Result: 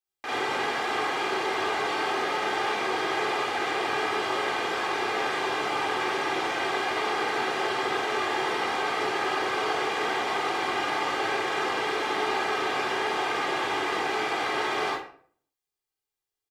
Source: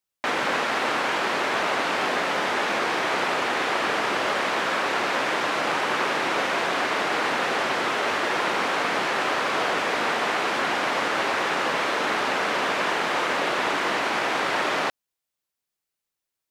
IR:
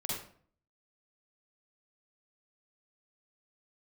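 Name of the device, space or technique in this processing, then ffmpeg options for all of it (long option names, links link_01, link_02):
microphone above a desk: -filter_complex "[0:a]aecho=1:1:2.5:0.63[link_01];[1:a]atrim=start_sample=2205[link_02];[link_01][link_02]afir=irnorm=-1:irlink=0,volume=-8dB"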